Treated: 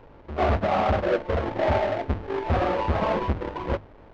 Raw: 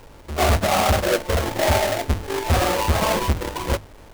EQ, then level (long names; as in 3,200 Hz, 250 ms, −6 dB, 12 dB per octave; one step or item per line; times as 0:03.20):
high-frequency loss of the air 75 metres
head-to-tape spacing loss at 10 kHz 33 dB
low-shelf EQ 130 Hz −7 dB
0.0 dB